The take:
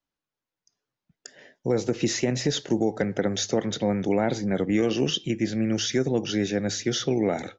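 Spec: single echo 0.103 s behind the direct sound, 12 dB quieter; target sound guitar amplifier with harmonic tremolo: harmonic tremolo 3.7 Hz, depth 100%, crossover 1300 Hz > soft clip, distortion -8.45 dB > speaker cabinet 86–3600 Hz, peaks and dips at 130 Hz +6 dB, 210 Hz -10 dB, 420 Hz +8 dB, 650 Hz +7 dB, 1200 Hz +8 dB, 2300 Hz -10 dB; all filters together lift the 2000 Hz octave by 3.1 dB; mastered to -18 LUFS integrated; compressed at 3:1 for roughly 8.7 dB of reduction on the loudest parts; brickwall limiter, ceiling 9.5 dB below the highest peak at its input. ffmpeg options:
-filter_complex "[0:a]equalizer=f=2k:t=o:g=6.5,acompressor=threshold=-30dB:ratio=3,alimiter=level_in=1.5dB:limit=-24dB:level=0:latency=1,volume=-1.5dB,aecho=1:1:103:0.251,acrossover=split=1300[a][b];[a]aeval=exprs='val(0)*(1-1/2+1/2*cos(2*PI*3.7*n/s))':c=same[c];[b]aeval=exprs='val(0)*(1-1/2-1/2*cos(2*PI*3.7*n/s))':c=same[d];[c][d]amix=inputs=2:normalize=0,asoftclip=threshold=-38dB,highpass=86,equalizer=f=130:t=q:w=4:g=6,equalizer=f=210:t=q:w=4:g=-10,equalizer=f=420:t=q:w=4:g=8,equalizer=f=650:t=q:w=4:g=7,equalizer=f=1.2k:t=q:w=4:g=8,equalizer=f=2.3k:t=q:w=4:g=-10,lowpass=f=3.6k:w=0.5412,lowpass=f=3.6k:w=1.3066,volume=25.5dB"

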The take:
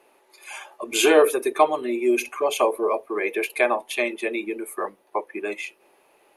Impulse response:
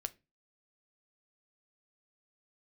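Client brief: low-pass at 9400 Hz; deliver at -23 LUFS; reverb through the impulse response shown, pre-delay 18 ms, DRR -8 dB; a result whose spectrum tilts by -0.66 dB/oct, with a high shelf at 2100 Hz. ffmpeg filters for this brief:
-filter_complex "[0:a]lowpass=9.4k,highshelf=f=2.1k:g=-6,asplit=2[a][b];[1:a]atrim=start_sample=2205,adelay=18[c];[b][c]afir=irnorm=-1:irlink=0,volume=9.5dB[d];[a][d]amix=inputs=2:normalize=0,volume=-7.5dB"

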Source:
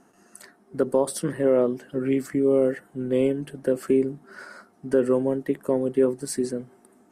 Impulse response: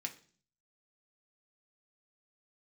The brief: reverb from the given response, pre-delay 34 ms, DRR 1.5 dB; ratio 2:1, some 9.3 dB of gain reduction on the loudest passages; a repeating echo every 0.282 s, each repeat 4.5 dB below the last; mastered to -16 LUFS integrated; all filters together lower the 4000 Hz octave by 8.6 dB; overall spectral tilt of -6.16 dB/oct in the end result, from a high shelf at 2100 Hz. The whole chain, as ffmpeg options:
-filter_complex "[0:a]highshelf=f=2.1k:g=-4.5,equalizer=f=4k:t=o:g=-7,acompressor=threshold=-33dB:ratio=2,aecho=1:1:282|564|846|1128|1410|1692|1974|2256|2538:0.596|0.357|0.214|0.129|0.0772|0.0463|0.0278|0.0167|0.01,asplit=2[a][b];[1:a]atrim=start_sample=2205,adelay=34[c];[b][c]afir=irnorm=-1:irlink=0,volume=-0.5dB[d];[a][d]amix=inputs=2:normalize=0,volume=13.5dB"

